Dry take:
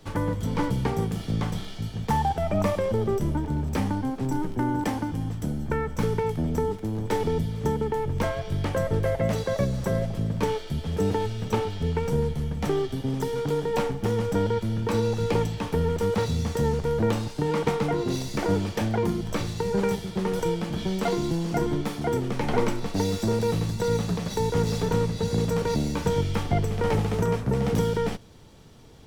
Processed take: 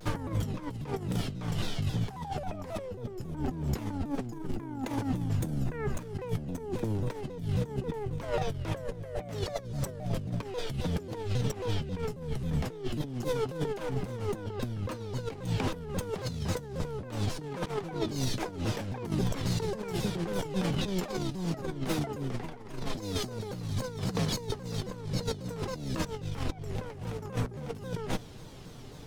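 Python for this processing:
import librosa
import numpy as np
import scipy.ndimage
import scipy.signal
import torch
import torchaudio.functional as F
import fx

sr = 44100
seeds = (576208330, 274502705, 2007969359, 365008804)

y = x + 0.34 * np.pad(x, (int(7.2 * sr / 1000.0), 0))[:len(x)]
y = fx.over_compress(y, sr, threshold_db=-30.0, ratio=-0.5)
y = fx.vibrato_shape(y, sr, shape='saw_down', rate_hz=3.7, depth_cents=250.0)
y = F.gain(torch.from_numpy(y), -2.0).numpy()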